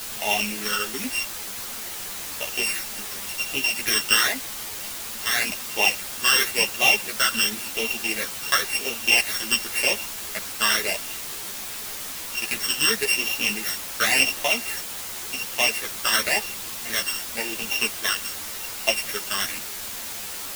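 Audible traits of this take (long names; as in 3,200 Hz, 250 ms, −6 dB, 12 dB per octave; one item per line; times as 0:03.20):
a buzz of ramps at a fixed pitch in blocks of 16 samples
phaser sweep stages 12, 0.92 Hz, lowest notch 720–1,600 Hz
a quantiser's noise floor 6 bits, dither triangular
a shimmering, thickened sound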